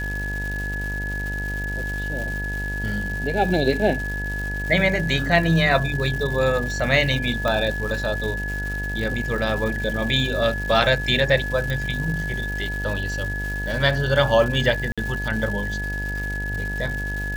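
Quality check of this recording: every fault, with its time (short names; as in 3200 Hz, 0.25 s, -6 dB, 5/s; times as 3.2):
buzz 50 Hz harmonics 19 -29 dBFS
crackle 400/s -30 dBFS
tone 1700 Hz -28 dBFS
7.48 pop
11.7 pop
14.92–14.98 gap 56 ms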